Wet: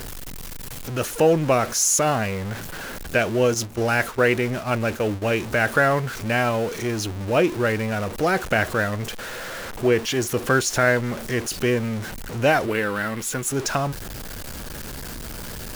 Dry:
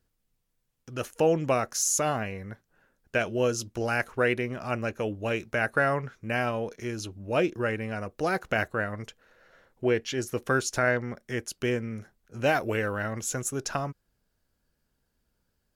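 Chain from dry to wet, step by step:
converter with a step at zero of −32.5 dBFS
0:03.54–0:05.22: noise gate −32 dBFS, range −8 dB
0:12.66–0:13.48: graphic EQ with 15 bands 100 Hz −10 dB, 630 Hz −6 dB, 6,300 Hz −7 dB
level +5 dB

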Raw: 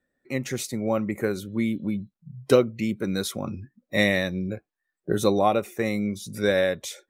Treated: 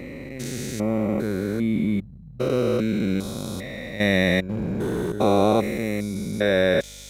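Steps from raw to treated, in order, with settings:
spectrum averaged block by block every 400 ms
in parallel at −4.5 dB: dead-zone distortion −43 dBFS
0:04.49–0:05.12: on the sum: leveller curve on the samples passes 3
mains hum 50 Hz, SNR 24 dB
level +2 dB

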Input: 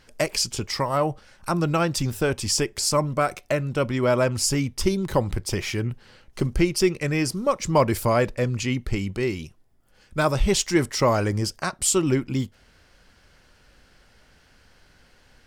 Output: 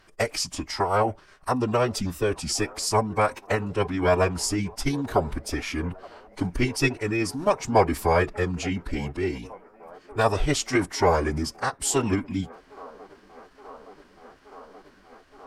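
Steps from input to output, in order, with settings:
delay with a band-pass on its return 873 ms, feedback 83%, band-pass 710 Hz, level −23 dB
phase-vocoder pitch shift with formants kept −5.5 semitones
parametric band 990 Hz +7 dB 2 octaves
level −3.5 dB

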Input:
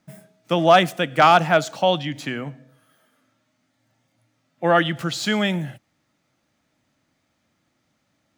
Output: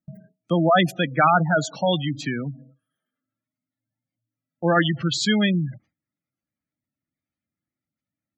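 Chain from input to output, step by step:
gate on every frequency bin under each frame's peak −15 dB strong
noise gate with hold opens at −42 dBFS
parametric band 760 Hz −9.5 dB 1.8 octaves
level +4.5 dB

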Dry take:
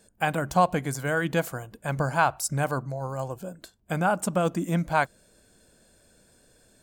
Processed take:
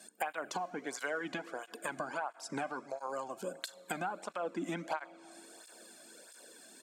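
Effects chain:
high-pass filter 230 Hz 24 dB per octave
treble cut that deepens with the level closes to 1,500 Hz, closed at −20 dBFS
low-shelf EQ 500 Hz −7 dB
in parallel at −2 dB: brickwall limiter −20.5 dBFS, peak gain reduction 9 dB
on the sum: downward compressor 10 to 1, threshold −36 dBFS, peak gain reduction 20.5 dB
slap from a distant wall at 56 metres, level −27 dB
on a send at −17.5 dB: convolution reverb RT60 3.9 s, pre-delay 4 ms
on the sum: through-zero flanger with one copy inverted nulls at 1.5 Hz, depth 2.3 ms
level +4.5 dB

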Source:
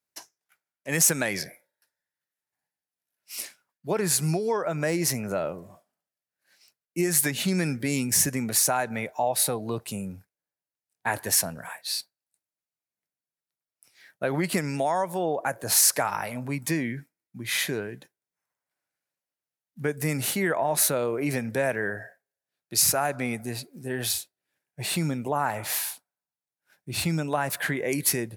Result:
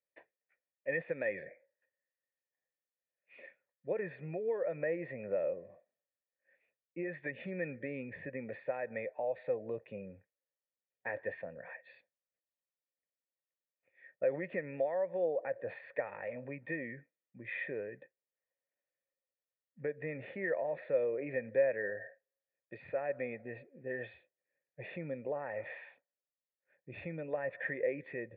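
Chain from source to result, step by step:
in parallel at +2.5 dB: downward compressor, threshold −32 dBFS, peak gain reduction 15 dB
on the sum: formant resonators in series e
level −2 dB

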